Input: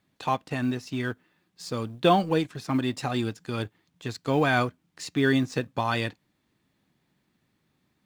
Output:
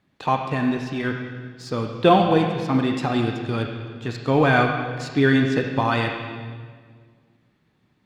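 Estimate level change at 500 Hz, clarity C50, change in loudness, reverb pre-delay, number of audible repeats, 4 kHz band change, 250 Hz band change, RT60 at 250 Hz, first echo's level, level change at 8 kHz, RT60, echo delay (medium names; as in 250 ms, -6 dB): +6.0 dB, 3.5 dB, +5.5 dB, 28 ms, no echo, +3.0 dB, +6.0 dB, 2.3 s, no echo, no reading, 1.8 s, no echo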